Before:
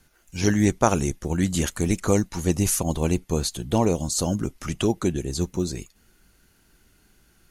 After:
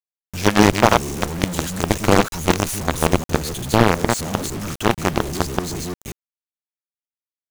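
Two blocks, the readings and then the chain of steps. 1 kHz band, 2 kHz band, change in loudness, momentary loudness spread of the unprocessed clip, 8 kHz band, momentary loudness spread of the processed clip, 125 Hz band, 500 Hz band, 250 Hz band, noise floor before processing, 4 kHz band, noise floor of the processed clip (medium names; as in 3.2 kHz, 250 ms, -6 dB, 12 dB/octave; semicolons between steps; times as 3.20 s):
+10.0 dB, +11.5 dB, +4.5 dB, 7 LU, +1.0 dB, 12 LU, +2.5 dB, +5.0 dB, +3.0 dB, -61 dBFS, +8.0 dB, under -85 dBFS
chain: chunks repeated in reverse 180 ms, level -2.5 dB; companded quantiser 2-bit; slew-rate limiter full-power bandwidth 1.2 kHz; trim -1 dB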